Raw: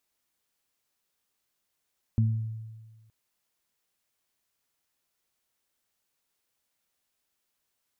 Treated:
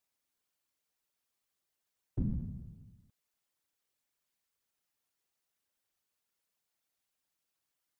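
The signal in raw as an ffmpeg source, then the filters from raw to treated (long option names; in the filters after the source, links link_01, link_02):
-f lavfi -i "aevalsrc='0.112*pow(10,-3*t/1.43)*sin(2*PI*111*t)+0.0531*pow(10,-3*t/0.54)*sin(2*PI*222*t)':duration=0.92:sample_rate=44100"
-af "afftfilt=real='hypot(re,im)*cos(2*PI*random(0))':imag='hypot(re,im)*sin(2*PI*random(1))':win_size=512:overlap=0.75"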